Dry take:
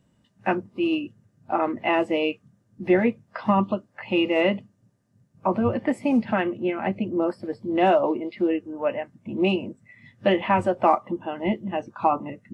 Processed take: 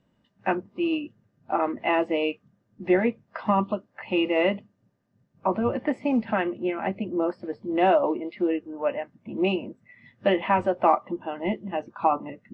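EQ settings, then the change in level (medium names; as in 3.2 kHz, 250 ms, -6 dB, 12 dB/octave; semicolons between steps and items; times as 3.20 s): distance through air 140 m; peaking EQ 98 Hz -7 dB 2.2 oct; 0.0 dB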